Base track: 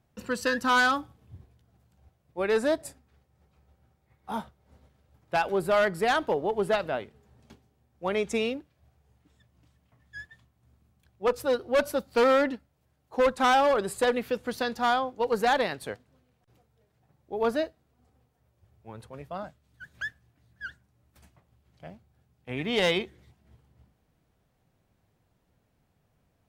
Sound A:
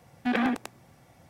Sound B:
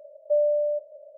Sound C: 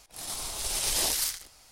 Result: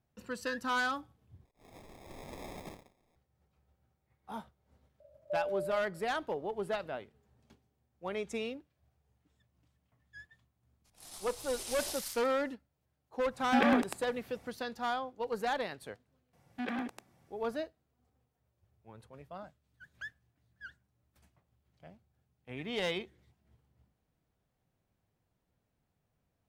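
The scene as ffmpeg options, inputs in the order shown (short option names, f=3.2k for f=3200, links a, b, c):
-filter_complex "[3:a]asplit=2[a][b];[1:a]asplit=2[c][d];[0:a]volume=-9.5dB[e];[a]acrusher=samples=30:mix=1:aa=0.000001[f];[b]aresample=32000,aresample=44100[g];[e]asplit=2[h][i];[h]atrim=end=1.454[j];[f]atrim=end=1.71,asetpts=PTS-STARTPTS,volume=-18dB[k];[i]atrim=start=3.156[l];[2:a]atrim=end=1.17,asetpts=PTS-STARTPTS,volume=-13.5dB,afade=t=in:d=0.004:c=hsin,afade=t=out:st=1.166:d=0.004:c=hsin,adelay=5000[m];[g]atrim=end=1.71,asetpts=PTS-STARTPTS,volume=-13dB,afade=t=in:d=0.02,afade=t=out:st=1.69:d=0.02,adelay=10840[n];[c]atrim=end=1.29,asetpts=PTS-STARTPTS,volume=-1.5dB,afade=t=in:d=0.1,afade=t=out:st=1.19:d=0.1,adelay=13270[o];[d]atrim=end=1.29,asetpts=PTS-STARTPTS,volume=-11dB,afade=t=in:d=0.004:c=hsin,afade=t=out:st=1.286:d=0.004:c=hsin,adelay=16330[p];[j][k]acrossfade=d=0.004:c1=hsin:c2=hsin[q];[q][l]acrossfade=d=0.004:c1=hsin:c2=hsin[r];[r][m][n][o][p]amix=inputs=5:normalize=0"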